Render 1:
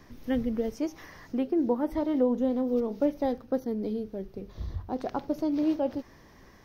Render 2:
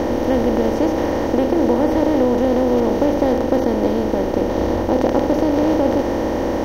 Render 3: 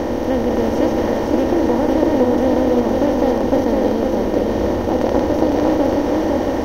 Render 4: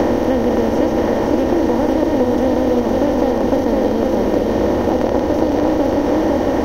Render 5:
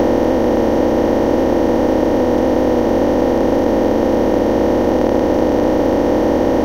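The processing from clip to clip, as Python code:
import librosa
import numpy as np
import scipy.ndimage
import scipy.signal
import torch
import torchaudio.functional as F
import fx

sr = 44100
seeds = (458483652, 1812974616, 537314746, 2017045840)

y1 = fx.bin_compress(x, sr, power=0.2)
y1 = y1 * librosa.db_to_amplitude(4.0)
y2 = y1 + 10.0 ** (-3.0 / 20.0) * np.pad(y1, (int(506 * sr / 1000.0), 0))[:len(y1)]
y2 = y2 * librosa.db_to_amplitude(-1.0)
y3 = fx.band_squash(y2, sr, depth_pct=100)
y4 = fx.bin_compress(y3, sr, power=0.2)
y4 = y4 * librosa.db_to_amplitude(-4.5)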